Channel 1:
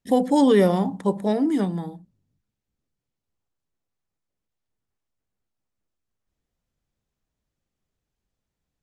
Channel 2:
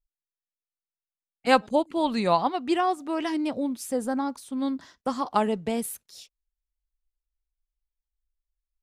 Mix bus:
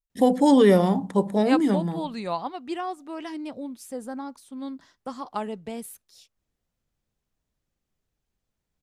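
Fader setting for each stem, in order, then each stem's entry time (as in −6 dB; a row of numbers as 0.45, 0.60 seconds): +0.5, −7.0 decibels; 0.10, 0.00 seconds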